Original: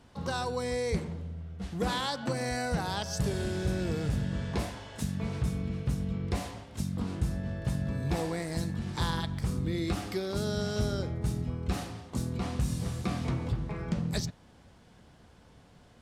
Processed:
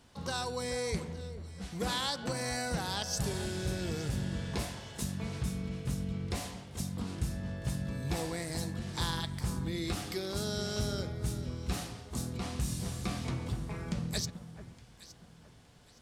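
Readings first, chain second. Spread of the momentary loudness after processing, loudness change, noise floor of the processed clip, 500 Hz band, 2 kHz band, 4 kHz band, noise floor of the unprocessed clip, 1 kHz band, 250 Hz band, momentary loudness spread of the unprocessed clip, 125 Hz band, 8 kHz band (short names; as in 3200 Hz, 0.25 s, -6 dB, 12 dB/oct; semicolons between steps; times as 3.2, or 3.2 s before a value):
7 LU, -3.0 dB, -57 dBFS, -4.0 dB, -2.0 dB, +1.5 dB, -58 dBFS, -3.5 dB, -4.0 dB, 5 LU, -4.0 dB, +3.0 dB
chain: high shelf 2700 Hz +8.5 dB; echo with dull and thin repeats by turns 0.433 s, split 1600 Hz, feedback 53%, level -11.5 dB; gain -4.5 dB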